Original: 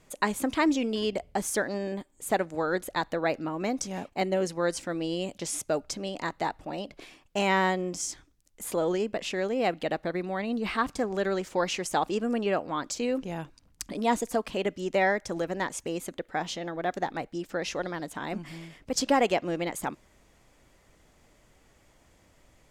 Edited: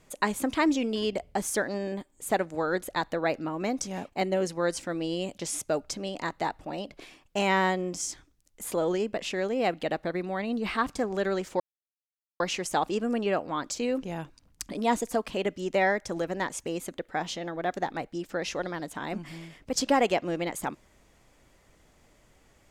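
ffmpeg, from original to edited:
-filter_complex "[0:a]asplit=2[s0][s1];[s0]atrim=end=11.6,asetpts=PTS-STARTPTS,afade=t=out:st=11.596:d=0.004:c=hsin,apad=pad_dur=0.8[s2];[s1]atrim=start=11.6,asetpts=PTS-STARTPTS,afade=t=in:d=0.004:c=hsin[s3];[s2][s3]concat=n=2:v=0:a=1"

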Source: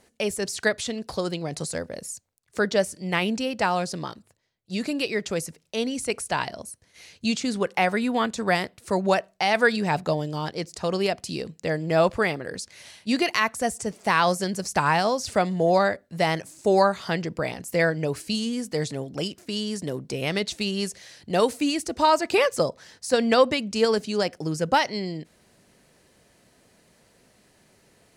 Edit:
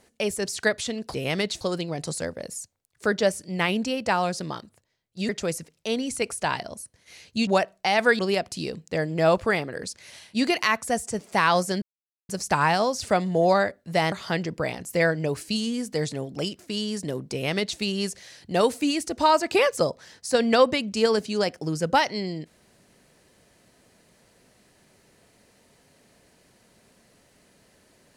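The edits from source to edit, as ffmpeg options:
-filter_complex "[0:a]asplit=8[s0][s1][s2][s3][s4][s5][s6][s7];[s0]atrim=end=1.142[s8];[s1]atrim=start=20.108:end=20.582[s9];[s2]atrim=start=1.138:end=4.822[s10];[s3]atrim=start=5.168:end=7.352[s11];[s4]atrim=start=9.028:end=9.752[s12];[s5]atrim=start=10.908:end=14.54,asetpts=PTS-STARTPTS,afade=t=out:st=3.628:d=0.004:c=hsin,apad=pad_dur=0.47[s13];[s6]atrim=start=14.54:end=16.372,asetpts=PTS-STARTPTS,afade=t=in:d=0.004:c=hsin[s14];[s7]atrim=start=16.908[s15];[s8][s9]acrossfade=d=0.004:c1=hsin:c2=hsin[s16];[s16][s10]acrossfade=d=0.004:c1=hsin:c2=hsin[s17];[s17][s11]acrossfade=d=0.004:c1=hsin:c2=hsin[s18];[s18][s12]acrossfade=d=0.004:c1=hsin:c2=hsin[s19];[s13][s14]concat=n=2:v=0:a=1[s20];[s19][s20]acrossfade=d=0.004:c1=hsin:c2=hsin[s21];[s21][s15]acrossfade=d=0.004:c1=hsin:c2=hsin"

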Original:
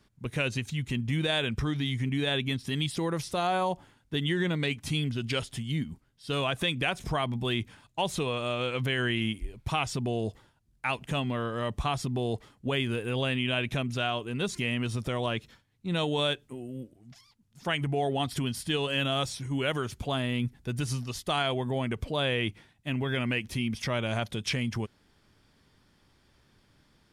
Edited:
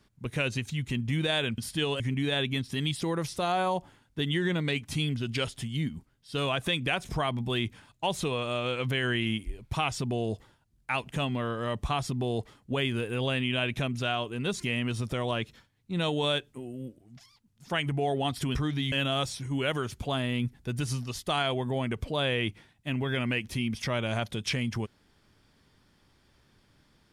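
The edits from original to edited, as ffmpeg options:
-filter_complex "[0:a]asplit=5[s0][s1][s2][s3][s4];[s0]atrim=end=1.582[s5];[s1]atrim=start=18.498:end=18.922[s6];[s2]atrim=start=1.948:end=18.502[s7];[s3]atrim=start=1.578:end=1.952[s8];[s4]atrim=start=18.918[s9];[s5][s6]acrossfade=d=0.004:c1=hsin:c2=hsin[s10];[s10][s7]acrossfade=d=0.004:c1=hsin:c2=hsin[s11];[s11][s8]acrossfade=d=0.004:c1=hsin:c2=hsin[s12];[s12][s9]acrossfade=d=0.004:c1=hsin:c2=hsin"

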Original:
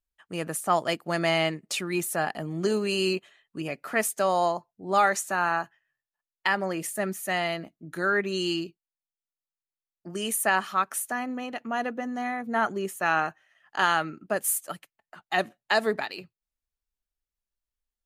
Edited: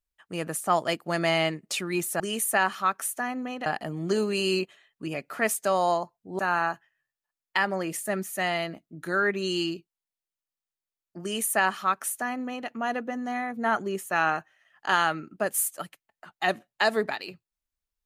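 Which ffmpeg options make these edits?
-filter_complex "[0:a]asplit=4[s0][s1][s2][s3];[s0]atrim=end=2.202[s4];[s1]atrim=start=10.118:end=11.582[s5];[s2]atrim=start=2.198:end=4.932[s6];[s3]atrim=start=5.288[s7];[s4][s5]acrossfade=d=0.004:c1=hsin:c2=hsin[s8];[s8][s6]acrossfade=d=0.004:c1=hsin:c2=hsin[s9];[s9][s7]acrossfade=d=0.004:c1=hsin:c2=hsin"

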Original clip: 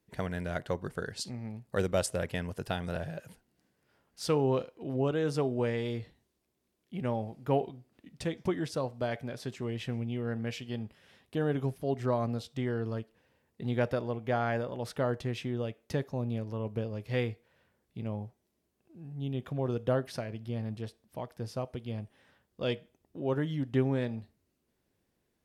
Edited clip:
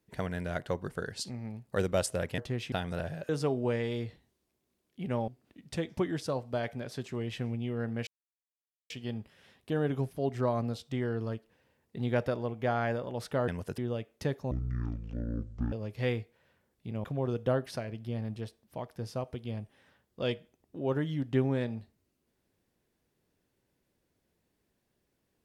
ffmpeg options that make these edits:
-filter_complex "[0:a]asplit=11[s0][s1][s2][s3][s4][s5][s6][s7][s8][s9][s10];[s0]atrim=end=2.382[s11];[s1]atrim=start=15.128:end=15.472[s12];[s2]atrim=start=2.678:end=3.252[s13];[s3]atrim=start=5.228:end=7.222[s14];[s4]atrim=start=7.758:end=10.55,asetpts=PTS-STARTPTS,afade=t=out:st=2.788:d=0.004:c=hsin,apad=pad_dur=0.83[s15];[s5]atrim=start=10.55:end=15.132,asetpts=PTS-STARTPTS,afade=t=in:d=0.004:c=hsin[s16];[s6]atrim=start=2.378:end=2.682[s17];[s7]atrim=start=15.468:end=16.204[s18];[s8]atrim=start=16.2:end=16.83,asetpts=PTS-STARTPTS,asetrate=22932,aresample=44100[s19];[s9]atrim=start=16.826:end=18.152[s20];[s10]atrim=start=19.448[s21];[s11][s12]acrossfade=d=0.004:c1=hsin:c2=hsin[s22];[s22][s13]acrossfade=d=0.004:c1=hsin:c2=hsin[s23];[s23][s14]acrossfade=d=0.004:c1=hsin:c2=hsin[s24];[s15][s16]concat=n=2:v=0:a=1[s25];[s24][s25]acrossfade=d=0.004:c1=hsin:c2=hsin[s26];[s26][s17]acrossfade=d=0.004:c1=hsin:c2=hsin[s27];[s27][s18]acrossfade=d=0.004:c1=hsin:c2=hsin[s28];[s28][s19]acrossfade=d=0.004:c1=hsin:c2=hsin[s29];[s29][s20]acrossfade=d=0.004:c1=hsin:c2=hsin[s30];[s30][s21]acrossfade=d=0.004:c1=hsin:c2=hsin"

